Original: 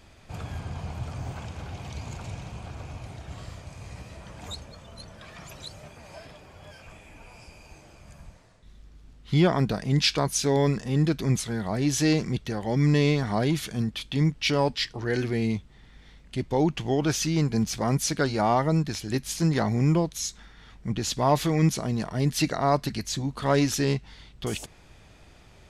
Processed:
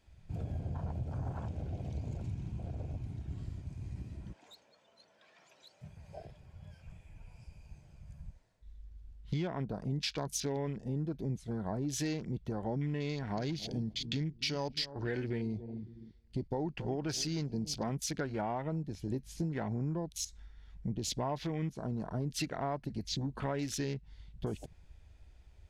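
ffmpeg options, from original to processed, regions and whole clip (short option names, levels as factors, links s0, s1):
-filter_complex "[0:a]asettb=1/sr,asplit=3[s0][s1][s2];[s0]atrim=end=4.334[s3];[s1]atrim=start=4.33:end=5.81,asetpts=PTS-STARTPTS,afade=t=in:d=0.004:c=qsin,afade=t=out:st=1.476:d=0.004:c=qsin,highpass=350,lowpass=6600,volume=47.3,asoftclip=hard,volume=0.0211[s4];[s2]atrim=start=5.806[s5];[s3][s4]acrossfade=d=0.004:c1=hsin:c2=qsin[s6];[s6][s5]acrossfade=d=0.004:c1=qsin:c2=hsin,asettb=1/sr,asplit=3[s7][s8][s9];[s7]atrim=end=13.094[s10];[s8]atrim=start=13.09:end=17.9,asetpts=PTS-STARTPTS,afade=t=in:d=0.004:c=qsin,afade=t=out:st=4.806:d=0.004:c=qsin,agate=range=0.398:threshold=0.00708:ratio=16:release=100:detection=peak,equalizer=f=4700:w=3.5:g=9,asplit=2[s11][s12];[s12]adelay=274,lowpass=f=1100:p=1,volume=0.168,asplit=2[s13][s14];[s14]adelay=274,lowpass=f=1100:p=1,volume=0.34,asplit=2[s15][s16];[s16]adelay=274,lowpass=f=1100:p=1,volume=0.34[s17];[s11][s13][s15][s17]amix=inputs=4:normalize=0,atrim=end_sample=212121[s18];[s9]atrim=start=17.896[s19];[s10][s18]acrossfade=d=0.004:c1=hsin:c2=qsin[s20];[s20][s19]acrossfade=d=0.004:c1=qsin:c2=hsin,afwtdn=0.0141,acompressor=threshold=0.0224:ratio=6,bandreject=f=1200:w=8.2"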